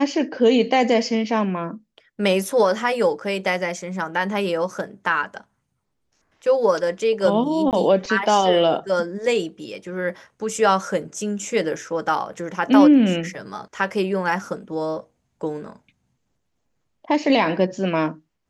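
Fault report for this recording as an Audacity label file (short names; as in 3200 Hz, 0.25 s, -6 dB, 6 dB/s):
7.710000	7.730000	gap 18 ms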